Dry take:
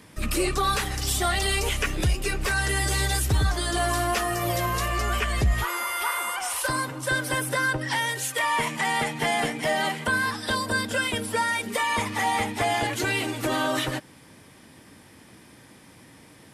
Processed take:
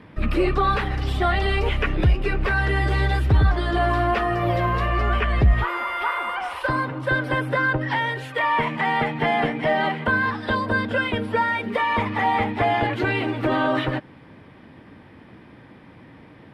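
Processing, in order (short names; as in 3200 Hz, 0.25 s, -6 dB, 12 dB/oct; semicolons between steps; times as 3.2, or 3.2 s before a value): air absorption 420 m; gain +6 dB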